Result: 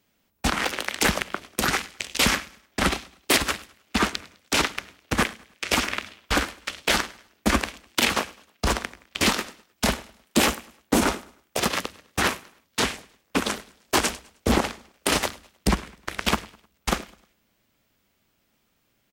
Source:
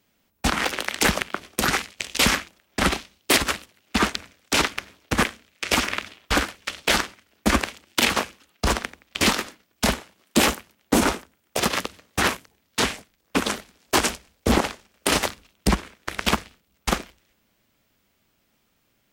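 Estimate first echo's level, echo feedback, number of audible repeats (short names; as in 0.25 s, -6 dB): -22.5 dB, 40%, 2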